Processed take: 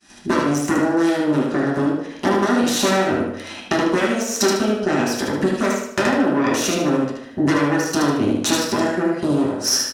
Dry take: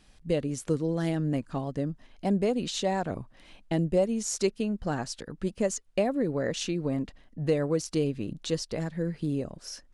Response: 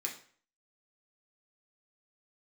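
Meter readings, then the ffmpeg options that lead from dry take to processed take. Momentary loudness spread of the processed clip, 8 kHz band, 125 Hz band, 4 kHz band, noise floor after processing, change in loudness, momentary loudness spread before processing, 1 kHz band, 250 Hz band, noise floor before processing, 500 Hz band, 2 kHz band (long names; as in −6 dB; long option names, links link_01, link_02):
4 LU, +13.0 dB, +4.0 dB, +14.0 dB, −37 dBFS, +10.5 dB, 8 LU, +15.0 dB, +11.5 dB, −59 dBFS, +8.5 dB, +18.0 dB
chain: -filter_complex "[0:a]deesser=0.85,agate=range=-33dB:threshold=-53dB:ratio=3:detection=peak,aeval=exprs='0.224*(cos(1*acos(clip(val(0)/0.224,-1,1)))-cos(1*PI/2))+0.0631*(cos(8*acos(clip(val(0)/0.224,-1,1)))-cos(8*PI/2))':channel_layout=same,lowshelf=frequency=190:width_type=q:width=1.5:gain=-6,acompressor=threshold=-34dB:ratio=12,highpass=40,aecho=1:1:75|150|225|300|375:0.631|0.227|0.0818|0.0294|0.0106[link_01];[1:a]atrim=start_sample=2205,asetrate=33516,aresample=44100[link_02];[link_01][link_02]afir=irnorm=-1:irlink=0,alimiter=level_in=22.5dB:limit=-1dB:release=50:level=0:latency=1,volume=-4.5dB"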